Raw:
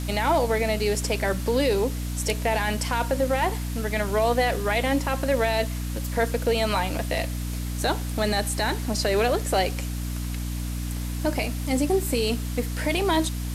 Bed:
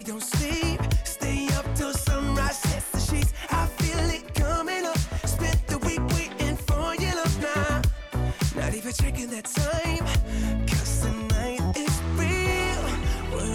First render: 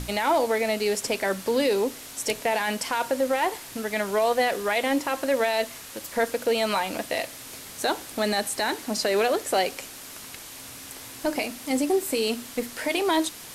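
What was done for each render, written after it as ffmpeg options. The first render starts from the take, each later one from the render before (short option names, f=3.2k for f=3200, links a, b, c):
-af "bandreject=f=60:t=h:w=6,bandreject=f=120:t=h:w=6,bandreject=f=180:t=h:w=6,bandreject=f=240:t=h:w=6,bandreject=f=300:t=h:w=6"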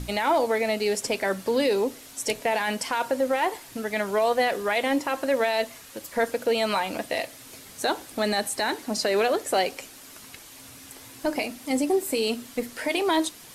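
-af "afftdn=nr=6:nf=-42"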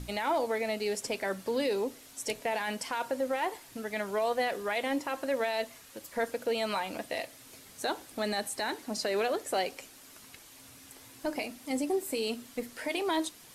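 -af "volume=-7dB"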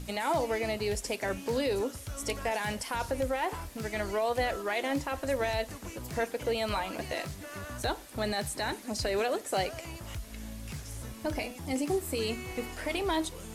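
-filter_complex "[1:a]volume=-16.5dB[a];[0:a][a]amix=inputs=2:normalize=0"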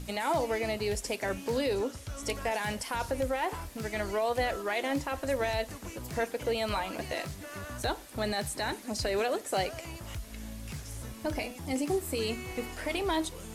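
-filter_complex "[0:a]asettb=1/sr,asplit=3[a][b][c];[a]atrim=end=1.754[d];[b]atrim=start=1.75:end=2.23,asetpts=PTS-STARTPTS,afade=t=in:d=0.004:c=qsin,afade=t=out:st=0.476:d=0.004:c=qsin,acrossover=split=7900[e][f];[f]acompressor=threshold=-58dB:ratio=4:attack=1:release=60[g];[e][g]amix=inputs=2:normalize=0[h];[c]atrim=start=2.226[i];[d][h]acrossfade=d=0.004:c1=hsin:c2=qsin[j];[j][i]acrossfade=d=0.004:c1=qsin:c2=hsin"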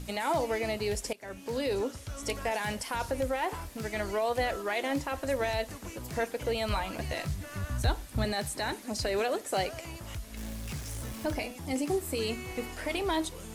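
-filter_complex "[0:a]asettb=1/sr,asplit=3[a][b][c];[a]atrim=end=6.184[d];[b]atrim=start=6.18:end=8.25,asetpts=PTS-STARTPTS,afade=t=in:d=0.004:c=qsin,afade=t=out:st=2.066:d=0.004:c=qsin,asubboost=boost=7.5:cutoff=180[e];[c]atrim=start=8.246[f];[d][e]acrossfade=d=0.004:c1=hsin:c2=qsin[g];[g][f]acrossfade=d=0.004:c1=qsin:c2=hsin,asettb=1/sr,asplit=3[h][i][j];[h]atrim=end=10.374[k];[i]atrim=start=10.37:end=11.35,asetpts=PTS-STARTPTS,afade=t=in:d=0.004:c=qsin,afade=t=out:st=0.976:d=0.004:c=qsin,aeval=exprs='val(0)+0.5*0.00841*sgn(val(0))':c=same[l];[j]atrim=start=11.346[m];[k][l]acrossfade=d=0.004:c1=hsin:c2=qsin[n];[n][m]acrossfade=d=0.004:c1=qsin:c2=hsin,asplit=2[o][p];[o]atrim=end=1.13,asetpts=PTS-STARTPTS,afade=t=out:st=1.126:d=0.004:c=hsin:silence=0.105925[q];[p]atrim=start=1.13,asetpts=PTS-STARTPTS,afade=t=in:d=0.62:silence=0.105925[r];[q][r]concat=n=2:v=0:a=1"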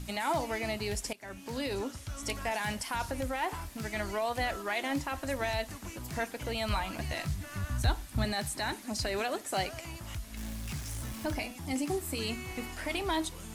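-af "equalizer=f=480:t=o:w=0.58:g=-8.5"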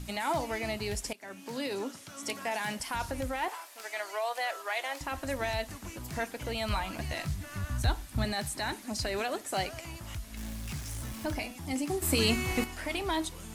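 -filter_complex "[0:a]asettb=1/sr,asplit=3[a][b][c];[a]atrim=end=1.144[d];[b]atrim=start=1.14:end=2.8,asetpts=PTS-STARTPTS,afade=t=in:d=0.004:c=qsin,afade=t=out:st=1.656:d=0.004:c=qsin,highpass=f=160:w=0.5412,highpass=f=160:w=1.3066[e];[c]atrim=start=2.796[f];[d][e]acrossfade=d=0.004:c1=hsin:c2=qsin[g];[g][f]acrossfade=d=0.004:c1=qsin:c2=hsin,asettb=1/sr,asplit=3[h][i][j];[h]atrim=end=3.484[k];[i]atrim=start=3.48:end=5.01,asetpts=PTS-STARTPTS,afade=t=in:d=0.004:c=qsin,afade=t=out:st=1.526:d=0.004:c=qsin,highpass=f=500:w=0.5412,highpass=f=500:w=1.3066[l];[j]atrim=start=5.006[m];[k][l]acrossfade=d=0.004:c1=hsin:c2=qsin[n];[n][m]acrossfade=d=0.004:c1=qsin:c2=hsin,asplit=3[o][p][q];[o]atrim=end=12.022[r];[p]atrim=start=12.018:end=12.642,asetpts=PTS-STARTPTS,volume=8.5dB[s];[q]atrim=start=12.638[t];[r][s]acrossfade=d=0.004:c1=hsin:c2=hsin[u];[u][t]acrossfade=d=0.004:c1=hsin:c2=hsin"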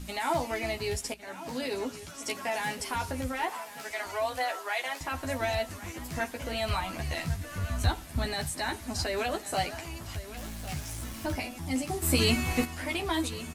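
-filter_complex "[0:a]asplit=2[a][b];[b]adelay=12,volume=-3.5dB[c];[a][c]amix=inputs=2:normalize=0,asplit=2[d][e];[e]adelay=1105,lowpass=f=4.8k:p=1,volume=-14.5dB,asplit=2[f][g];[g]adelay=1105,lowpass=f=4.8k:p=1,volume=0.31,asplit=2[h][i];[i]adelay=1105,lowpass=f=4.8k:p=1,volume=0.31[j];[d][f][h][j]amix=inputs=4:normalize=0"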